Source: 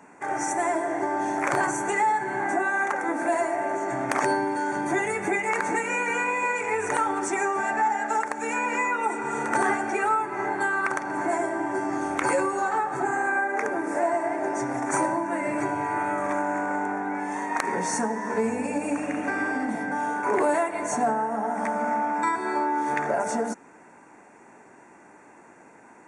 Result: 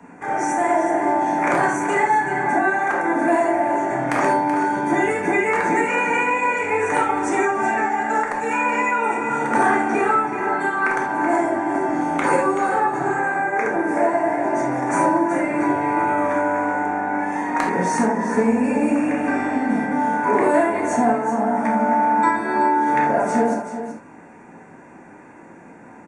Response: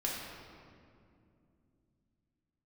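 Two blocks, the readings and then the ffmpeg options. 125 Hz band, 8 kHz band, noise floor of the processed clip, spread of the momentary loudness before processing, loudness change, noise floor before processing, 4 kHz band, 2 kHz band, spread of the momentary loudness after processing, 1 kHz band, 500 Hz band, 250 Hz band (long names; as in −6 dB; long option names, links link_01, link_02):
+8.0 dB, −1.0 dB, −44 dBFS, 4 LU, +6.0 dB, −51 dBFS, can't be measured, +5.0 dB, 4 LU, +6.5 dB, +6.5 dB, +8.5 dB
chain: -filter_complex "[0:a]bass=frequency=250:gain=10,treble=frequency=4000:gain=-6,acrossover=split=170|510|2600[link_01][link_02][link_03][link_04];[link_01]acompressor=threshold=-46dB:ratio=6[link_05];[link_05][link_02][link_03][link_04]amix=inputs=4:normalize=0,aecho=1:1:379:0.316[link_06];[1:a]atrim=start_sample=2205,atrim=end_sample=3969[link_07];[link_06][link_07]afir=irnorm=-1:irlink=0,volume=3dB"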